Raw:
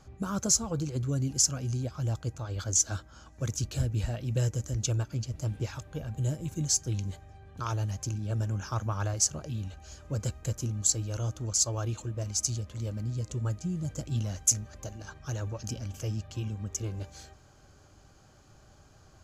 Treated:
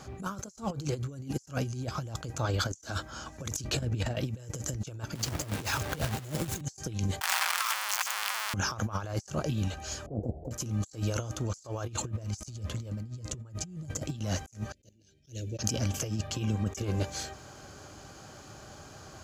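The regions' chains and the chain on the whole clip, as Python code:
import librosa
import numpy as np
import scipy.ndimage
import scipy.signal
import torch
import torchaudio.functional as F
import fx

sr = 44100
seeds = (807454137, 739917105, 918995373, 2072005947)

y = fx.chain(x, sr, fx.lowpass(hz=3700.0, slope=6),
    fx.over_compress(threshold_db=-33.0, ratio=-0.5), at=(3.64, 4.16))
y = fx.chain(y, sr, fx.quant_companded(bits=4),
    fx.band_squash(depth_pct=100), at=(5.15, 6.61))
y = fx.chain(y, sr, fx.clip_1bit(),
    fx.highpass(hz=1000.0, slope=24),
    fx.notch(hz=3800.0, q=26.0), at=(7.21, 8.54))
y = fx.chain(y, sr, fx.lower_of_two(delay_ms=2.1),
    fx.ellip_lowpass(hz=730.0, order=4, stop_db=40), at=(10.06, 10.51))
y = fx.chain(y, sr, fx.highpass(hz=62.0, slope=24),
    fx.low_shelf(hz=130.0, db=9.5), at=(11.88, 14.03))
y = fx.chain(y, sr, fx.cheby1_bandstop(low_hz=380.0, high_hz=2900.0, order=2),
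    fx.level_steps(step_db=14),
    fx.upward_expand(threshold_db=-52.0, expansion=2.5), at=(14.72, 15.59))
y = fx.highpass(y, sr, hz=170.0, slope=6)
y = fx.over_compress(y, sr, threshold_db=-39.0, ratio=-0.5)
y = fx.attack_slew(y, sr, db_per_s=250.0)
y = y * 10.0 ** (6.5 / 20.0)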